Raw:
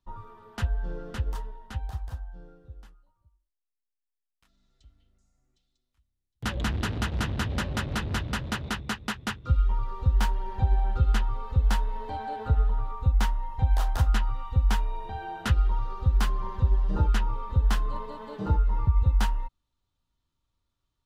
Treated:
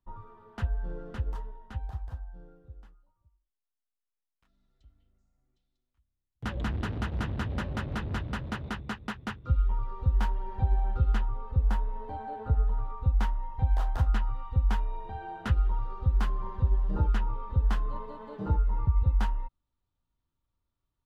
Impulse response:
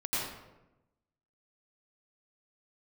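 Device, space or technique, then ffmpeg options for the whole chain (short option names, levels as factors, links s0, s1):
through cloth: -filter_complex "[0:a]asettb=1/sr,asplit=3[s0][s1][s2];[s0]atrim=end=11.254[s3];[s1]atrim=start=11.25:end=12.68,asetpts=PTS-STARTPTS,afade=t=in:d=0.004:c=qsin,afade=t=out:st=1.426:d=0.004:c=qsin,equalizer=f=4000:w=0.43:g=-5[s4];[s2]atrim=start=12.676[s5];[s3][s4]acrossfade=d=0.004:c1=hsin:c2=qsin[s6];[s6][s5]acrossfade=d=0.004:c1=qsin:c2=hsin,highshelf=f=3200:g=-13,volume=0.75"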